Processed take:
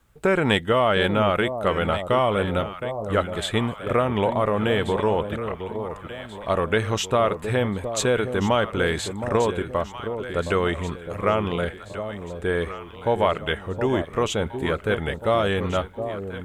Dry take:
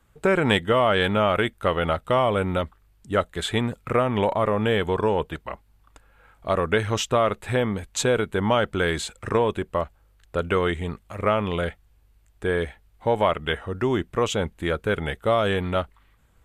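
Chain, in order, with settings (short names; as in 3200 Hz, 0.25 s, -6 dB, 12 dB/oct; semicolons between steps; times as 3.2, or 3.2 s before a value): requantised 12-bit, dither none; vibrato 2.7 Hz 7 cents; echo with dull and thin repeats by turns 0.717 s, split 840 Hz, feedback 64%, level -8 dB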